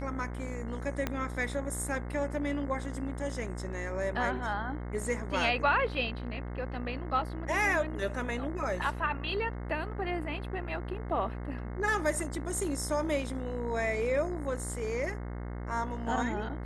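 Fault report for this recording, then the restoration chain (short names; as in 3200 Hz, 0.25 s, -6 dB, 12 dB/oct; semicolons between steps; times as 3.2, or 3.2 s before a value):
buzz 60 Hz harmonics 36 -38 dBFS
1.07 pop -16 dBFS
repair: de-click; de-hum 60 Hz, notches 36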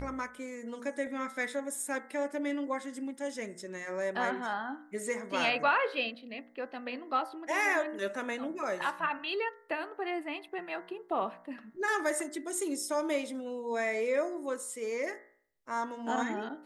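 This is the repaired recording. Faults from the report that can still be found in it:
1.07 pop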